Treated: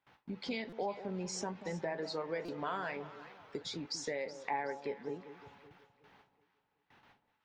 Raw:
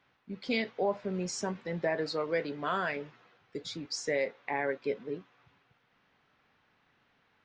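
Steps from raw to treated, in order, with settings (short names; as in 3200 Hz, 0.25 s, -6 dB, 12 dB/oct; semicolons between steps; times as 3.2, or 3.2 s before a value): gate with hold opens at -59 dBFS; compressor 3:1, threshold -46 dBFS, peak gain reduction 15.5 dB; bell 870 Hz +8.5 dB 0.29 oct; on a send: echo with dull and thin repeats by turns 0.187 s, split 910 Hz, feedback 61%, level -11.5 dB; on the sum: stuck buffer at 0.69/2.45, samples 256, times 5; gain +5.5 dB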